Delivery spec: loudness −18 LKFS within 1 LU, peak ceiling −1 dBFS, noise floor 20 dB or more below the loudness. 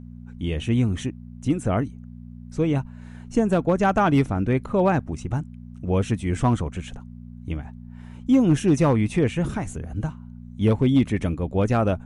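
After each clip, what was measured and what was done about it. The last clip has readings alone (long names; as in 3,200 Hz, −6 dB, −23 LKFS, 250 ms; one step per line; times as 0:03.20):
share of clipped samples 0.2%; peaks flattened at −10.5 dBFS; mains hum 60 Hz; hum harmonics up to 240 Hz; level of the hum −38 dBFS; integrated loudness −23.0 LKFS; sample peak −10.5 dBFS; target loudness −18.0 LKFS
→ clipped peaks rebuilt −10.5 dBFS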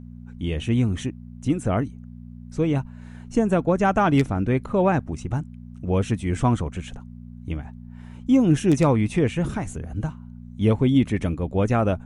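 share of clipped samples 0.0%; mains hum 60 Hz; hum harmonics up to 240 Hz; level of the hum −38 dBFS
→ hum removal 60 Hz, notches 4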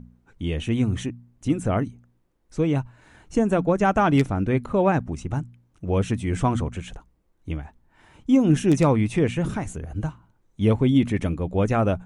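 mains hum none found; integrated loudness −23.5 LKFS; sample peak −4.5 dBFS; target loudness −18.0 LKFS
→ level +5.5 dB
brickwall limiter −1 dBFS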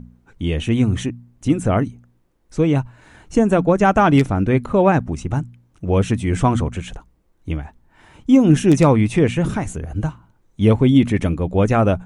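integrated loudness −18.0 LKFS; sample peak −1.0 dBFS; background noise floor −60 dBFS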